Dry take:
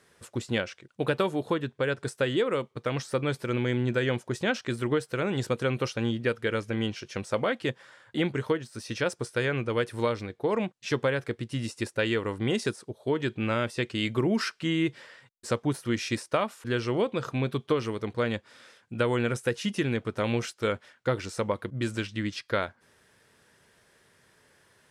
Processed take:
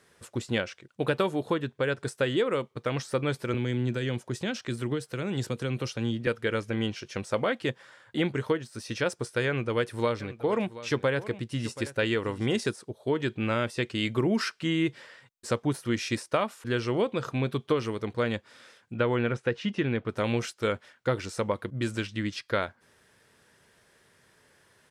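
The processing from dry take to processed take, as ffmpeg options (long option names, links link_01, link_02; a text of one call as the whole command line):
ffmpeg -i in.wav -filter_complex "[0:a]asettb=1/sr,asplit=3[link_01][link_02][link_03];[link_01]atrim=end=3.544[link_04];[link_02]atrim=start=3.54:end=6.27,asetpts=PTS-STARTPTS,afade=type=in:duration=0.004:curve=qsin,afade=type=out:start_time=2.726:duration=0.004:curve=qsin,acrossover=split=310|3000[link_05][link_06][link_07];[link_06]acompressor=threshold=-39dB:ratio=2:attack=3.2:release=140:knee=2.83:detection=peak[link_08];[link_05][link_08][link_07]amix=inputs=3:normalize=0[link_09];[link_03]atrim=start=6.266[link_10];[link_04][link_09]acrossfade=duration=0.004:curve1=hsin:curve2=qsin[link_11];[link_11][link_10]acrossfade=duration=0.004:curve1=qsin:curve2=hsin,asplit=3[link_12][link_13][link_14];[link_12]afade=type=out:start_time=10.19:duration=0.02[link_15];[link_13]aecho=1:1:729:0.168,afade=type=in:start_time=10.19:duration=0.02,afade=type=out:start_time=12.64:duration=0.02[link_16];[link_14]afade=type=in:start_time=12.64:duration=0.02[link_17];[link_15][link_16][link_17]amix=inputs=3:normalize=0,asettb=1/sr,asplit=3[link_18][link_19][link_20];[link_18]atrim=end=18.954[link_21];[link_19]atrim=start=18.95:end=20.09,asetpts=PTS-STARTPTS,afade=type=in:duration=0.004:curve=qsin,afade=type=out:start_time=1.136:duration=0.004:curve=qsin,lowpass=3300[link_22];[link_20]atrim=start=20.086[link_23];[link_21][link_22]acrossfade=duration=0.004:curve1=hsin:curve2=qsin[link_24];[link_24][link_23]acrossfade=duration=0.004:curve1=qsin:curve2=hsin" out.wav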